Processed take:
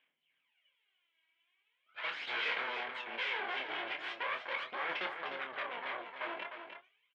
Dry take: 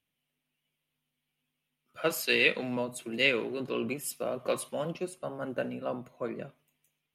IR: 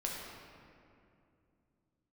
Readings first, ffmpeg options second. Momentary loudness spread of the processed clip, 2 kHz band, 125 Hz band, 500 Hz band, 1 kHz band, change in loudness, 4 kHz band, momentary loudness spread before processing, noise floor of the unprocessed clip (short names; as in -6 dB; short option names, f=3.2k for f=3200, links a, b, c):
8 LU, -3.5 dB, under -25 dB, -13.5 dB, +1.5 dB, -6.5 dB, -5.5 dB, 13 LU, -85 dBFS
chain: -filter_complex "[0:a]acompressor=threshold=-33dB:ratio=2.5,asoftclip=type=tanh:threshold=-34.5dB,aphaser=in_gain=1:out_gain=1:delay=3.1:decay=0.77:speed=0.4:type=sinusoidal,aeval=exprs='0.0841*(cos(1*acos(clip(val(0)/0.0841,-1,1)))-cos(1*PI/2))+0.0376*(cos(6*acos(clip(val(0)/0.0841,-1,1)))-cos(6*PI/2))':c=same,asoftclip=type=hard:threshold=-28.5dB,highpass=490,equalizer=f=1k:t=q:w=4:g=5,equalizer=f=1.6k:t=q:w=4:g=8,equalizer=f=2.2k:t=q:w=4:g=10,equalizer=f=3.2k:t=q:w=4:g=8,lowpass=f=3.6k:w=0.5412,lowpass=f=3.6k:w=1.3066,asplit=2[a][b];[b]adelay=26,volume=-6dB[c];[a][c]amix=inputs=2:normalize=0,aecho=1:1:303:0.422,volume=-5dB"